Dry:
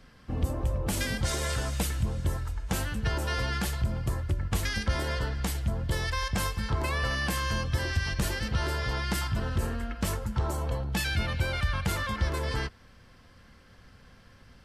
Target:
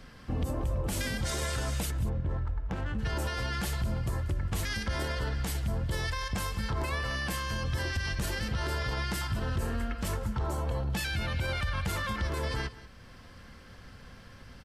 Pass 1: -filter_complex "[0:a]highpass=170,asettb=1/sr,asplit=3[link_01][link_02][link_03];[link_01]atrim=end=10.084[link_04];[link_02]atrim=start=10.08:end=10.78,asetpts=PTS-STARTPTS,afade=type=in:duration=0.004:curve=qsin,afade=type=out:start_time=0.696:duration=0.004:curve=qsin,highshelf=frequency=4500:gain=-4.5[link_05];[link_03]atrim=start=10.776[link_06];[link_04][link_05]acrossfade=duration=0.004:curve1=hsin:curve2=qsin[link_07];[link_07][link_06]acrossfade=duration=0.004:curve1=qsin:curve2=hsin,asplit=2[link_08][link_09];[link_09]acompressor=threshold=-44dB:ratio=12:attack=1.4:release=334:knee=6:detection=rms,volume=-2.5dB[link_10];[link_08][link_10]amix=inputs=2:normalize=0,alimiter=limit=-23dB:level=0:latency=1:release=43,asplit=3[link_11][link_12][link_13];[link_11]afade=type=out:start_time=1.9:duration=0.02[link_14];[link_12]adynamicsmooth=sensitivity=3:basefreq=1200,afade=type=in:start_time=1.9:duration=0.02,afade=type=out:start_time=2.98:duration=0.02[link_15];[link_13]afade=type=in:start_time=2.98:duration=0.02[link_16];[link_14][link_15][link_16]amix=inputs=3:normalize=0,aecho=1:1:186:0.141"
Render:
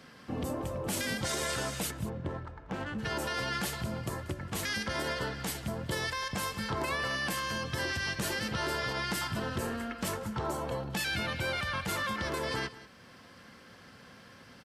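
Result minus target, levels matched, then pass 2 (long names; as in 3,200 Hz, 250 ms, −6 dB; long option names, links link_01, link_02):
125 Hz band −6.0 dB
-filter_complex "[0:a]asettb=1/sr,asplit=3[link_01][link_02][link_03];[link_01]atrim=end=10.084[link_04];[link_02]atrim=start=10.08:end=10.78,asetpts=PTS-STARTPTS,afade=type=in:duration=0.004:curve=qsin,afade=type=out:start_time=0.696:duration=0.004:curve=qsin,highshelf=frequency=4500:gain=-4.5[link_05];[link_03]atrim=start=10.776[link_06];[link_04][link_05]acrossfade=duration=0.004:curve1=hsin:curve2=qsin[link_07];[link_07][link_06]acrossfade=duration=0.004:curve1=qsin:curve2=hsin,asplit=2[link_08][link_09];[link_09]acompressor=threshold=-44dB:ratio=12:attack=1.4:release=334:knee=6:detection=rms,volume=-2.5dB[link_10];[link_08][link_10]amix=inputs=2:normalize=0,alimiter=limit=-23dB:level=0:latency=1:release=43,asplit=3[link_11][link_12][link_13];[link_11]afade=type=out:start_time=1.9:duration=0.02[link_14];[link_12]adynamicsmooth=sensitivity=3:basefreq=1200,afade=type=in:start_time=1.9:duration=0.02,afade=type=out:start_time=2.98:duration=0.02[link_15];[link_13]afade=type=in:start_time=2.98:duration=0.02[link_16];[link_14][link_15][link_16]amix=inputs=3:normalize=0,aecho=1:1:186:0.141"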